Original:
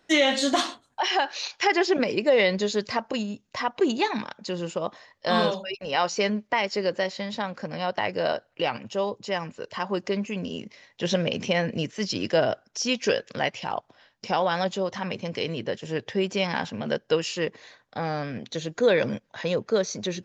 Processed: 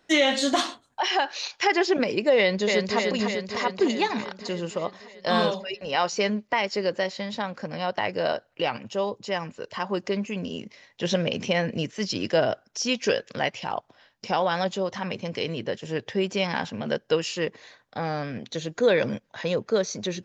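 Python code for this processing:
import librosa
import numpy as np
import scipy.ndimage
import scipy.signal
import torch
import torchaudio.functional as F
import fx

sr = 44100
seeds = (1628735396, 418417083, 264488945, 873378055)

y = fx.echo_throw(x, sr, start_s=2.37, length_s=0.6, ms=300, feedback_pct=70, wet_db=-3.5)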